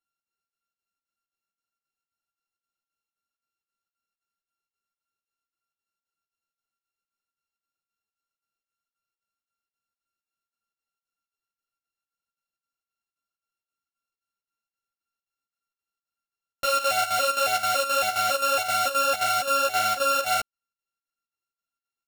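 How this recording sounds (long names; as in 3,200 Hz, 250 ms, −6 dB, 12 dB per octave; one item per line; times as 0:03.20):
a buzz of ramps at a fixed pitch in blocks of 32 samples
chopped level 3.8 Hz, depth 65%, duty 75%
a shimmering, thickened sound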